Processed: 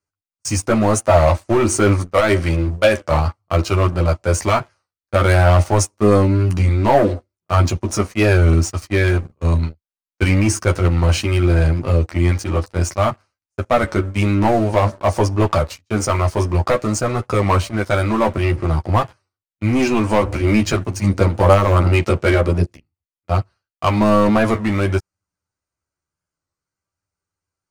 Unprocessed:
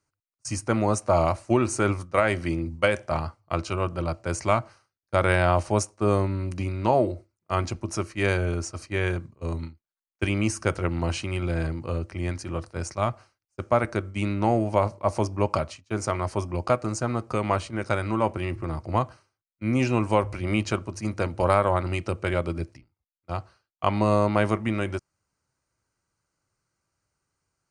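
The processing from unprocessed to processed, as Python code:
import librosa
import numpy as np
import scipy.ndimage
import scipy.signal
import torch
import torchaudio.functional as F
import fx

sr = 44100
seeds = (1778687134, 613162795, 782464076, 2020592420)

y = fx.leveller(x, sr, passes=3)
y = fx.chorus_voices(y, sr, voices=4, hz=0.51, base_ms=12, depth_ms=2.1, mix_pct=40)
y = fx.record_warp(y, sr, rpm=33.33, depth_cents=100.0)
y = y * 10.0 ** (2.0 / 20.0)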